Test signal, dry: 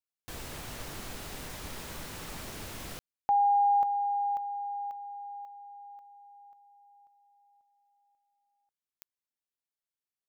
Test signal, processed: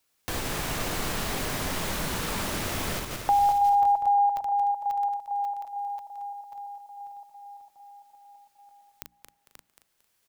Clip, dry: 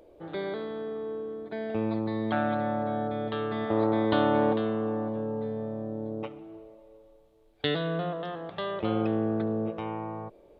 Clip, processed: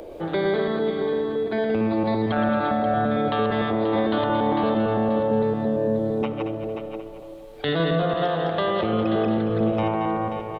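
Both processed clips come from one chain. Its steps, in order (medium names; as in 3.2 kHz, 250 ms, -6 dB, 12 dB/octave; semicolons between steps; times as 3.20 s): backward echo that repeats 113 ms, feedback 49%, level -4 dB; hum notches 60/120/180/240/300 Hz; peak limiter -22.5 dBFS; delay 533 ms -10.5 dB; three bands compressed up and down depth 40%; trim +8.5 dB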